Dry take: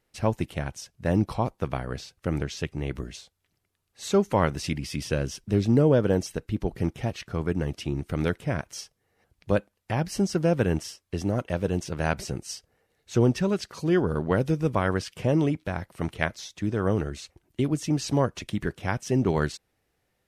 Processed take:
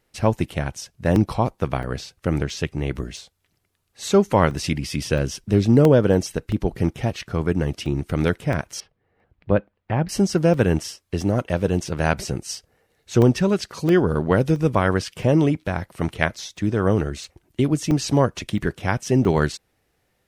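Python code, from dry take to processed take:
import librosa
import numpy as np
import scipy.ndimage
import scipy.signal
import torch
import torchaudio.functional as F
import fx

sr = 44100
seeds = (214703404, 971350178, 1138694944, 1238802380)

y = fx.air_absorb(x, sr, metres=420.0, at=(8.8, 10.09))
y = fx.buffer_crackle(y, sr, first_s=0.49, period_s=0.67, block=64, kind='zero')
y = y * 10.0 ** (5.5 / 20.0)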